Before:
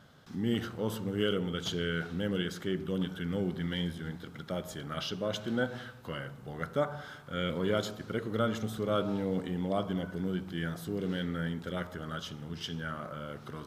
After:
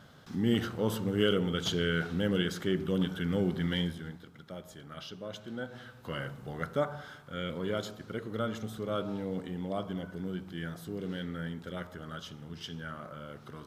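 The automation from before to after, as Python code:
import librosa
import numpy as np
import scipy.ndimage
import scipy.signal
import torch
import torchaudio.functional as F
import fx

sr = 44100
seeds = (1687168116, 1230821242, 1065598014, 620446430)

y = fx.gain(x, sr, db=fx.line((3.77, 3.0), (4.31, -8.0), (5.64, -8.0), (6.23, 3.0), (7.44, -3.5)))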